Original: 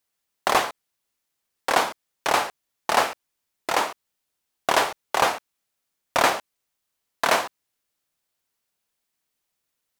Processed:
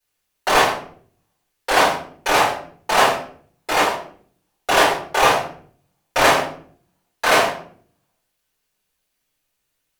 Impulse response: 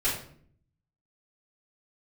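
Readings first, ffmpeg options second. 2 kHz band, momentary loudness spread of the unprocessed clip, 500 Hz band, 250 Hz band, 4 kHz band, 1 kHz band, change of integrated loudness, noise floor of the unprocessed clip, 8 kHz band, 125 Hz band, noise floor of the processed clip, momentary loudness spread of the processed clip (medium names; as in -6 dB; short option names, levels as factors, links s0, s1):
+7.0 dB, 11 LU, +7.0 dB, +7.5 dB, +6.5 dB, +5.5 dB, +6.0 dB, -80 dBFS, +5.0 dB, +10.0 dB, -75 dBFS, 14 LU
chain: -filter_complex "[1:a]atrim=start_sample=2205,asetrate=48510,aresample=44100[s0];[0:a][s0]afir=irnorm=-1:irlink=0,volume=0.794"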